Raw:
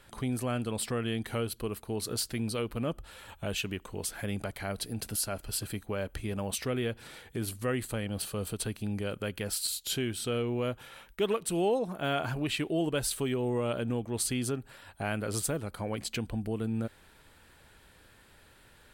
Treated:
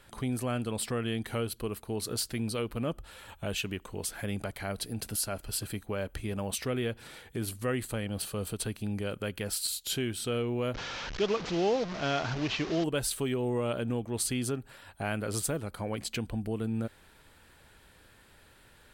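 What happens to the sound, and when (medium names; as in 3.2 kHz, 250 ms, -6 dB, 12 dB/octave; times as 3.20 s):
10.74–12.84 s: one-bit delta coder 32 kbps, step -32 dBFS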